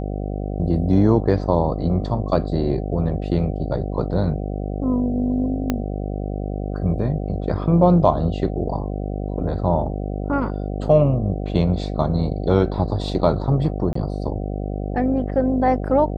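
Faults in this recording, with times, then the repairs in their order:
mains buzz 50 Hz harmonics 15 −26 dBFS
0:05.70: click −8 dBFS
0:13.93–0:13.95: drop-out 24 ms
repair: click removal
hum removal 50 Hz, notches 15
repair the gap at 0:13.93, 24 ms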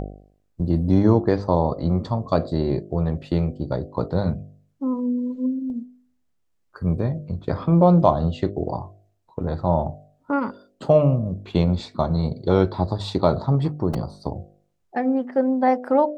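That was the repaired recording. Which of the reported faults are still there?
0:05.70: click

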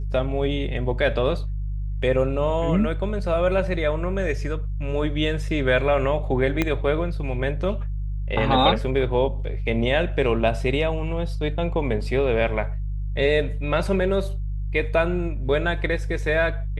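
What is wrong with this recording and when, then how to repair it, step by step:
mains hum 50 Hz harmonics 3 −27 dBFS
0:06.62: click −8 dBFS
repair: click removal
hum removal 50 Hz, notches 3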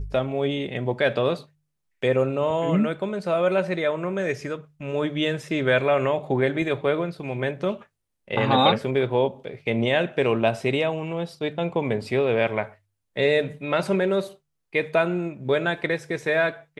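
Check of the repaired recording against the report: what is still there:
0:06.62: click

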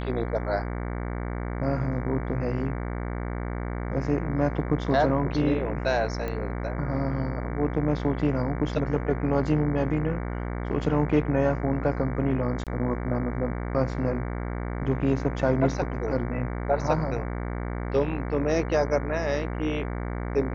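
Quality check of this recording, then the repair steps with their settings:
mains buzz 60 Hz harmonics 38 −31 dBFS
0:06.28: click −20 dBFS
0:12.64–0:12.67: drop-out 27 ms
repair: click removal
hum removal 60 Hz, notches 38
repair the gap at 0:12.64, 27 ms

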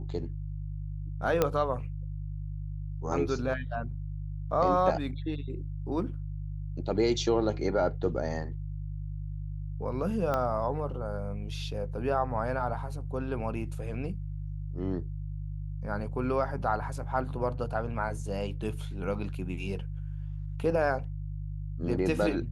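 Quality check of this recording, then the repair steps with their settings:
mains hum 50 Hz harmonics 3 −36 dBFS
0:01.42: click −11 dBFS
0:10.34: click −17 dBFS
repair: click removal
hum removal 50 Hz, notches 3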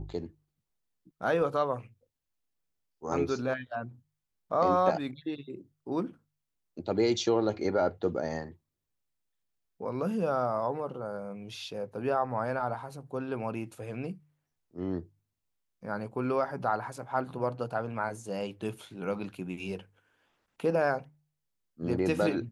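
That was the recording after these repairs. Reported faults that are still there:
0:10.34: click

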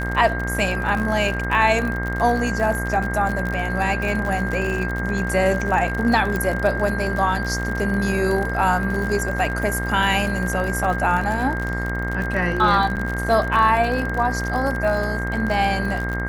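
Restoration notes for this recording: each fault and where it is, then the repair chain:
mains buzz 60 Hz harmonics 36 −26 dBFS
surface crackle 56 per second −25 dBFS
whistle 1,600 Hz −27 dBFS
0:06.36: click
0:12.96–0:12.97: drop-out 8.1 ms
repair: click removal
notch filter 1,600 Hz, Q 30
hum removal 60 Hz, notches 36
repair the gap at 0:12.96, 8.1 ms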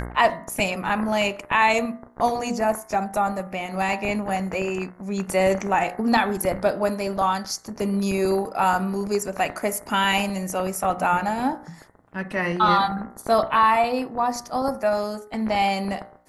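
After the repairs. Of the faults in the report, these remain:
none of them is left

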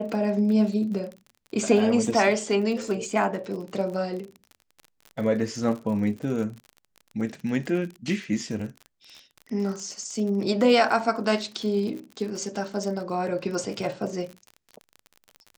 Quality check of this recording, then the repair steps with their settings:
surface crackle 40 per second −33 dBFS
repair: click removal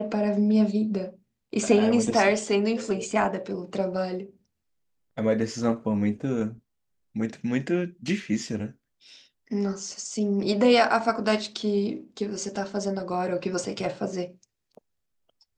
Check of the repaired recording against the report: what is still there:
none of them is left

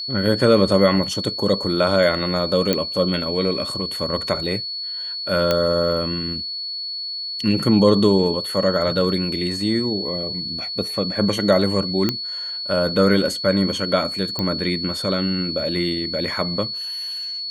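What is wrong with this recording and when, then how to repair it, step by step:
whistle 4,400 Hz −26 dBFS
0:02.73: click −5 dBFS
0:05.51: click −5 dBFS
0:12.09: click −6 dBFS
0:14.39: click −10 dBFS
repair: click removal
notch filter 4,400 Hz, Q 30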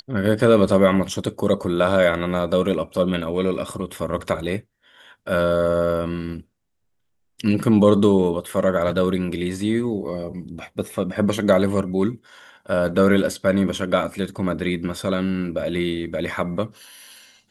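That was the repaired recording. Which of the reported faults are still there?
none of them is left

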